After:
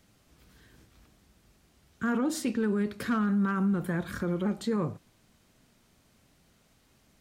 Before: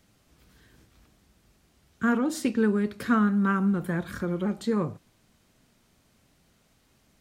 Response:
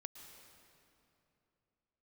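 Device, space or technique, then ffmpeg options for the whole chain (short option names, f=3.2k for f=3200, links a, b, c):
clipper into limiter: -af "asoftclip=type=hard:threshold=-15.5dB,alimiter=limit=-21dB:level=0:latency=1:release=18"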